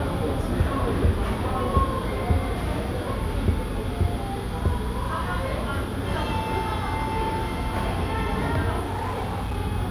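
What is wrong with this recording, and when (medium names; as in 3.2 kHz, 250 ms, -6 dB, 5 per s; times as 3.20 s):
8.81–9.57 s: clipped -24.5 dBFS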